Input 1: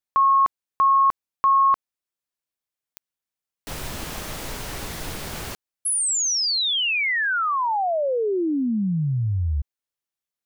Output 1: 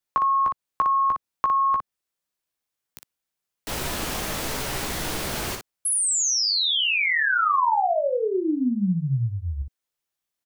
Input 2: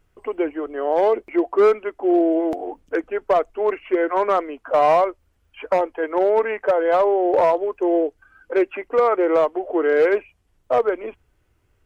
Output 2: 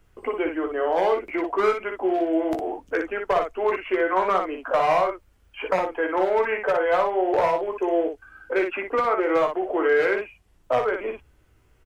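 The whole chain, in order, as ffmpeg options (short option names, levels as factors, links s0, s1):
-filter_complex "[0:a]acrossover=split=180|960[s0][s1][s2];[s0]acompressor=threshold=0.01:ratio=2[s3];[s1]acompressor=threshold=0.0282:ratio=3[s4];[s2]acompressor=threshold=0.0316:ratio=2[s5];[s3][s4][s5]amix=inputs=3:normalize=0,aecho=1:1:16|59:0.447|0.531,volume=1.41"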